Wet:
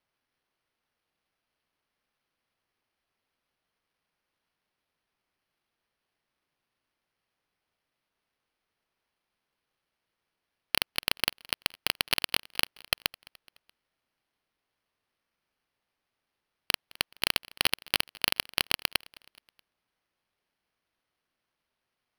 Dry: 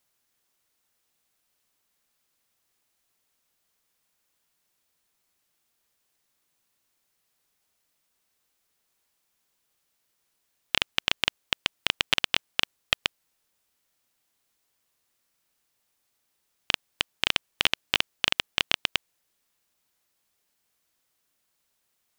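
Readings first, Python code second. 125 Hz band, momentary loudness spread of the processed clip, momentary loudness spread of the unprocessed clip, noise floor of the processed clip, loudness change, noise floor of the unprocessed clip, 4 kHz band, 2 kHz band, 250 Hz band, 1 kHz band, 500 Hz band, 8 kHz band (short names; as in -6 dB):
-1.5 dB, 5 LU, 5 LU, -85 dBFS, -2.0 dB, -76 dBFS, -3.0 dB, -3.0 dB, -1.5 dB, -2.0 dB, -1.5 dB, +3.0 dB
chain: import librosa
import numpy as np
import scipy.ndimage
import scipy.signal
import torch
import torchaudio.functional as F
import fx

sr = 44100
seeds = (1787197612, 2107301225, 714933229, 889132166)

p1 = x + fx.echo_feedback(x, sr, ms=212, feedback_pct=52, wet_db=-24.0, dry=0)
p2 = np.repeat(scipy.signal.resample_poly(p1, 1, 6), 6)[:len(p1)]
y = p2 * librosa.db_to_amplitude(-1.5)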